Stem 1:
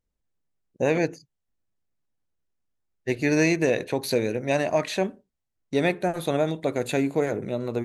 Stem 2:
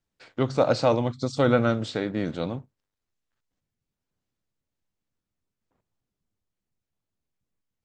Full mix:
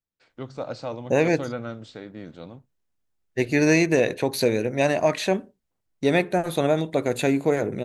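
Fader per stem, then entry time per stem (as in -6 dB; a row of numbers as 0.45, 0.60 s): +2.5, -11.0 dB; 0.30, 0.00 s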